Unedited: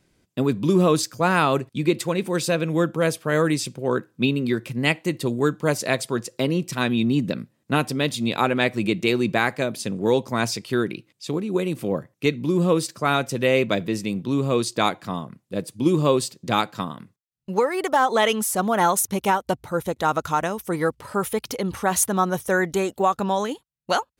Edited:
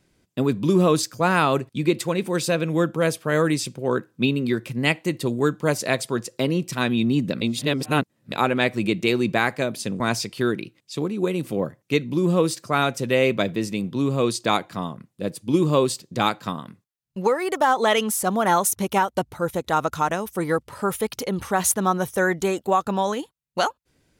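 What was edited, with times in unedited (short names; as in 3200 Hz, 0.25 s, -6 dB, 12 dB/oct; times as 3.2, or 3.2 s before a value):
7.41–8.32 reverse
10–10.32 cut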